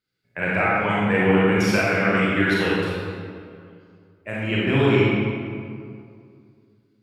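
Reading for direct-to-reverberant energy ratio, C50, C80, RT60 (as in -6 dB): -7.5 dB, -4.0 dB, -1.5 dB, 2.3 s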